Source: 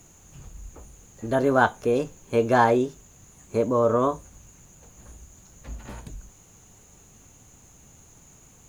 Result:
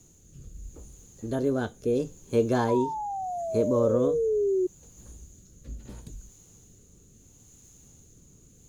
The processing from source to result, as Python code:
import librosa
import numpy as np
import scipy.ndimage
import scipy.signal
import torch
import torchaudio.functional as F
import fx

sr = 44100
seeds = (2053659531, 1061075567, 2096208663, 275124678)

y = fx.rotary(x, sr, hz=0.75)
y = fx.spec_paint(y, sr, seeds[0], shape='fall', start_s=2.68, length_s=1.99, low_hz=360.0, high_hz=1000.0, level_db=-24.0)
y = fx.band_shelf(y, sr, hz=1300.0, db=-8.5, octaves=2.5)